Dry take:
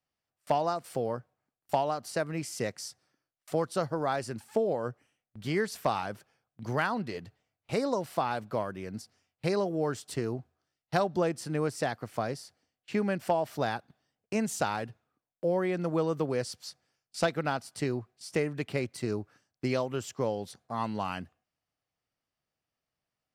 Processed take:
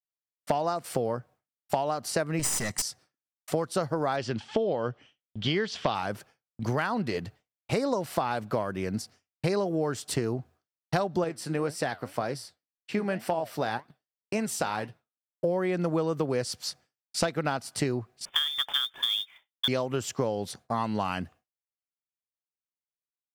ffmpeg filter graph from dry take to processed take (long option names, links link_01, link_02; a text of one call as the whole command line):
ffmpeg -i in.wav -filter_complex "[0:a]asettb=1/sr,asplit=3[link_01][link_02][link_03];[link_01]atrim=end=2.394[link_04];[link_02]atrim=start=2.39:end=2.82,asetpts=PTS-STARTPTS,afade=type=in:duration=0.004:curve=qsin,afade=type=out:start_time=0.426:duration=0.004:curve=qsin,equalizer=frequency=8300:width=1.1:gain=14,aecho=1:1:1:0.62,atrim=end_sample=18963,aeval=exprs='clip(val(0),-1,0.0158)':channel_layout=same[link_05];[link_03]atrim=start=2.816[link_06];[link_04][link_05]acrossfade=duration=0.004:curve1=hsin:curve2=qsin[link_07];[link_07][link_06]acrossfade=duration=0.004:curve1=qsin:curve2=hsin,asettb=1/sr,asplit=3[link_08][link_09][link_10];[link_08]atrim=end=4.174[link_11];[link_09]atrim=start=4.17:end=5.95,asetpts=PTS-STARTPTS,afade=type=in:duration=0.004:curve=qsin,afade=type=out:start_time=1.776:duration=0.004:curve=qsin,lowpass=frequency=5800:width=0.5412,lowpass=frequency=5800:width=1.3066,equalizer=frequency=3200:width_type=o:width=0.39:gain=12.5[link_12];[link_10]atrim=start=5.946[link_13];[link_11][link_12]acrossfade=duration=0.004:curve1=hsin:curve2=qsin[link_14];[link_14][link_13]acrossfade=duration=0.004:curve1=qsin:curve2=hsin,asettb=1/sr,asplit=3[link_15][link_16][link_17];[link_15]atrim=end=11.244[link_18];[link_16]atrim=start=11.24:end=15.44,asetpts=PTS-STARTPTS,afade=type=in:duration=0.004:curve=qsin,afade=type=out:start_time=4.196:duration=0.004:curve=qsin,lowshelf=frequency=130:gain=-6.5,bandreject=frequency=6700:width=6.5,flanger=delay=5.2:depth=7.6:regen=71:speed=1.9:shape=triangular[link_19];[link_17]atrim=start=15.436[link_20];[link_18][link_19]acrossfade=duration=0.004:curve1=hsin:curve2=qsin[link_21];[link_21][link_20]acrossfade=duration=0.004:curve1=qsin:curve2=hsin,asettb=1/sr,asplit=3[link_22][link_23][link_24];[link_22]atrim=end=18.254[link_25];[link_23]atrim=start=18.25:end=19.68,asetpts=PTS-STARTPTS,afade=type=in:duration=0.004:curve=qsin,afade=type=out:start_time=1.426:duration=0.004:curve=qsin,lowpass=frequency=3100:width_type=q:width=0.5098,lowpass=frequency=3100:width_type=q:width=0.6013,lowpass=frequency=3100:width_type=q:width=0.9,lowpass=frequency=3100:width_type=q:width=2.563,afreqshift=-3700,acrusher=bits=4:mode=log:mix=0:aa=0.000001[link_26];[link_24]atrim=start=19.676[link_27];[link_25][link_26]acrossfade=duration=0.004:curve1=hsin:curve2=qsin[link_28];[link_28][link_27]acrossfade=duration=0.004:curve1=qsin:curve2=hsin,agate=range=-33dB:threshold=-54dB:ratio=3:detection=peak,acompressor=threshold=-34dB:ratio=4,volume=9dB" out.wav